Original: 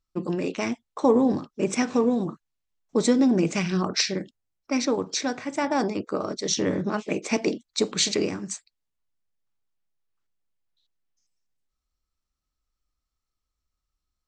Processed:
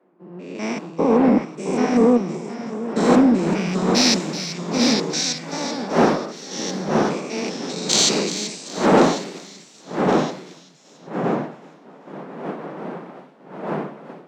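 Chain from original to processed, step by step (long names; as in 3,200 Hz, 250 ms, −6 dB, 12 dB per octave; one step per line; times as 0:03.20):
spectrum averaged block by block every 200 ms
wind on the microphone 620 Hz −30 dBFS
Butterworth high-pass 150 Hz 96 dB per octave
delay with pitch and tempo change per echo 612 ms, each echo −1 semitone, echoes 2, each echo −6 dB
in parallel at −3.5 dB: asymmetric clip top −22.5 dBFS, bottom −15 dBFS
on the sum: automatic gain control gain up to 11.5 dB
on a send: delay with a high-pass on its return 384 ms, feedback 62%, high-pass 3,000 Hz, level −5.5 dB
on the sum: multiband upward and downward expander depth 100%
level −6.5 dB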